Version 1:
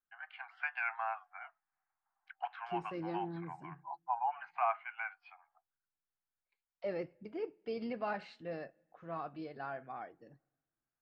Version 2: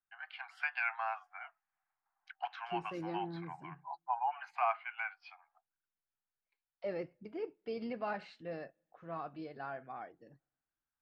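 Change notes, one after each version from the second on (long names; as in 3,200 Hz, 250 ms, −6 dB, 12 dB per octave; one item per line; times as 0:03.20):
first voice: remove low-pass filter 2,300 Hz 12 dB per octave
second voice: send −8.5 dB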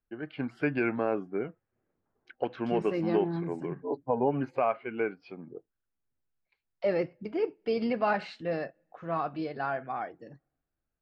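first voice: remove Butterworth high-pass 720 Hz 96 dB per octave
second voice +11.0 dB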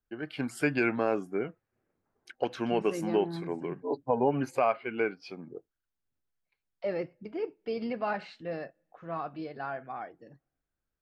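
first voice: remove high-frequency loss of the air 320 metres
second voice −4.5 dB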